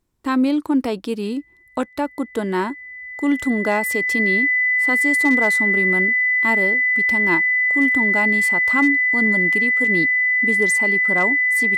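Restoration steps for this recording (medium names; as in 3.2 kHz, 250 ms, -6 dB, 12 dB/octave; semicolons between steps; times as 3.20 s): clip repair -9 dBFS; band-stop 2 kHz, Q 30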